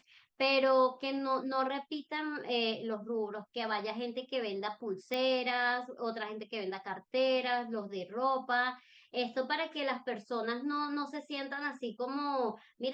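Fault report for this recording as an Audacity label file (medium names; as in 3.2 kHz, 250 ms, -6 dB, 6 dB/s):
5.140000	5.140000	pop -21 dBFS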